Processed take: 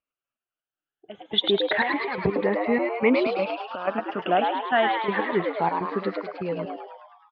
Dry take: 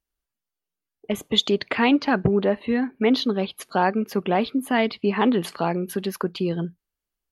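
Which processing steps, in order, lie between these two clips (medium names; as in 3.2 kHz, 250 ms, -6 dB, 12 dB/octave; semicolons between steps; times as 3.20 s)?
drifting ripple filter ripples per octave 0.91, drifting +0.28 Hz, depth 13 dB; Bessel low-pass 1.8 kHz, order 6; tilt EQ +3 dB/octave; trance gate "x.x.x.xxx..xx." 124 bpm -12 dB; frequency-shifting echo 105 ms, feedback 59%, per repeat +110 Hz, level -4 dB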